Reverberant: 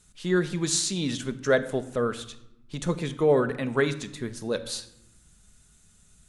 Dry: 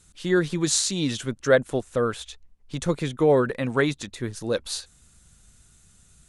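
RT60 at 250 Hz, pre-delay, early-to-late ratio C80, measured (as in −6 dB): 1.4 s, 5 ms, 17.0 dB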